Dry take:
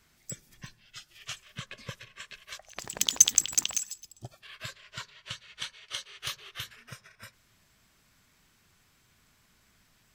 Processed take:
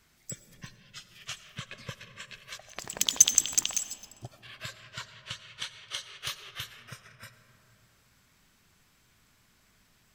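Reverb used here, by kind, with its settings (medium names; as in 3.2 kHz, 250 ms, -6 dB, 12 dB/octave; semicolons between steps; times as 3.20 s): algorithmic reverb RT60 3.7 s, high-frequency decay 0.3×, pre-delay 50 ms, DRR 11 dB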